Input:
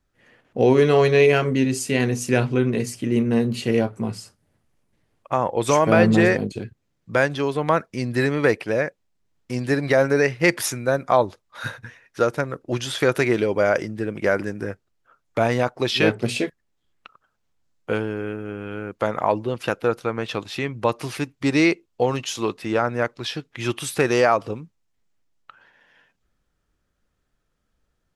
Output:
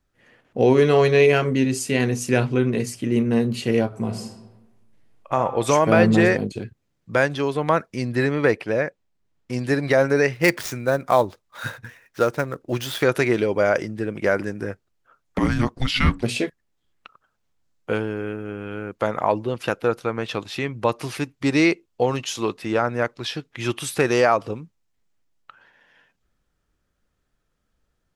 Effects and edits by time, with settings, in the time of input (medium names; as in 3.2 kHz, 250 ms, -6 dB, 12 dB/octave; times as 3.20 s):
3.86–5.36 s: reverb throw, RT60 1.1 s, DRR 5 dB
8.11–9.53 s: treble shelf 5.5 kHz -7 dB
10.33–13.03 s: dead-time distortion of 0.051 ms
15.38–16.23 s: frequency shift -390 Hz